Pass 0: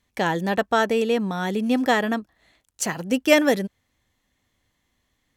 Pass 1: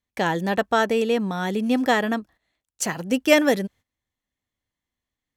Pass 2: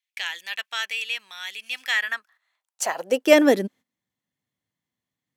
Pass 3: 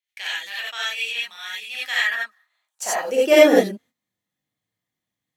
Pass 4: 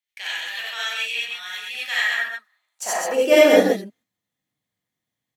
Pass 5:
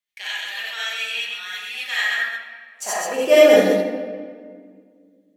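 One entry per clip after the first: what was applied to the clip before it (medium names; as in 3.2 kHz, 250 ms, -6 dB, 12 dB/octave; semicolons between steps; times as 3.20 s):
gate -47 dBFS, range -15 dB
high-pass sweep 2.5 kHz -> 140 Hz, 1.84–4.15 s; trim -1 dB
gated-style reverb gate 110 ms rising, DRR -6.5 dB; trim -5 dB
delay 129 ms -4 dB; trim -1 dB
simulated room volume 3100 m³, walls mixed, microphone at 1.3 m; trim -1 dB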